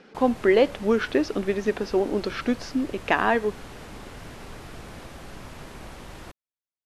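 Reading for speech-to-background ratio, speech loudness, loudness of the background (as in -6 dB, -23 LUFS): 18.5 dB, -24.0 LUFS, -42.5 LUFS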